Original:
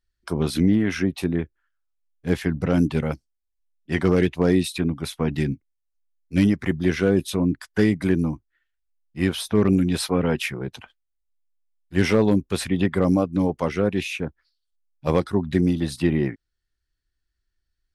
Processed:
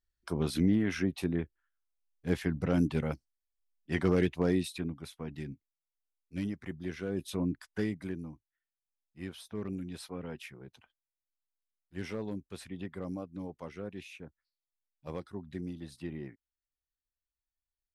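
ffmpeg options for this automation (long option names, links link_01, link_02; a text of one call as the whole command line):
ffmpeg -i in.wav -af "volume=-1dB,afade=type=out:start_time=4.29:duration=0.87:silence=0.354813,afade=type=in:start_time=7.08:duration=0.32:silence=0.446684,afade=type=out:start_time=7.4:duration=0.81:silence=0.334965" out.wav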